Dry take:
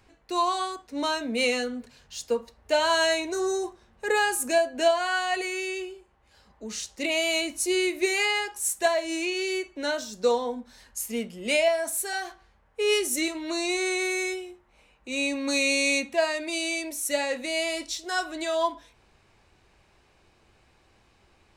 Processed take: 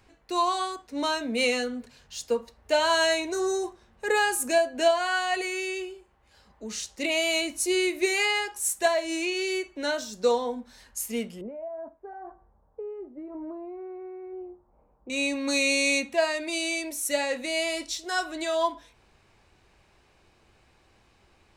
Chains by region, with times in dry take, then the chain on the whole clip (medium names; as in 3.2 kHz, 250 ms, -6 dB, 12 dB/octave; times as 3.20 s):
11.41–15.10 s: compression 8:1, threshold -33 dBFS + low-pass 1 kHz 24 dB/octave
whole clip: none